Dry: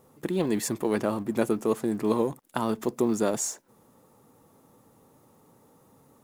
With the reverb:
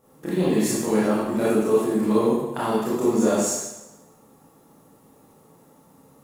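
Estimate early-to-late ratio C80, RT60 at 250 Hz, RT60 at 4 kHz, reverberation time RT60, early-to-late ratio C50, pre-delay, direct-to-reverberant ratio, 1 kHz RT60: 2.0 dB, 0.95 s, 0.90 s, 0.95 s, -2.0 dB, 15 ms, -9.0 dB, 1.0 s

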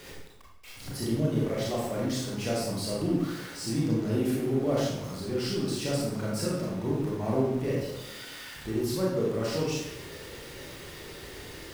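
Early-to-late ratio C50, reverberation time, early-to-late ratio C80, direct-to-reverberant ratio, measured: 0.0 dB, 0.90 s, 3.5 dB, -5.0 dB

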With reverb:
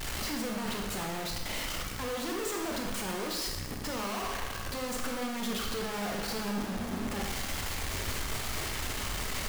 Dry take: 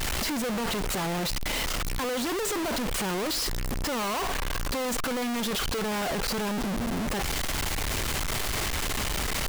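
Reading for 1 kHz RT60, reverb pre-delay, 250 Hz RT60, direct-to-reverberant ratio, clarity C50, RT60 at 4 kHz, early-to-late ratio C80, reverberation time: 1.1 s, 13 ms, 1.2 s, 1.0 dB, 3.5 dB, 1.0 s, 5.5 dB, 1.1 s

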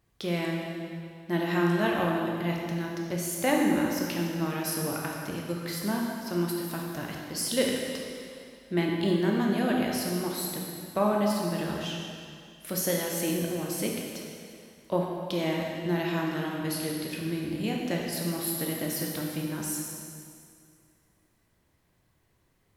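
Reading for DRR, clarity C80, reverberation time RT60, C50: -1.5 dB, 2.0 dB, 2.3 s, 0.5 dB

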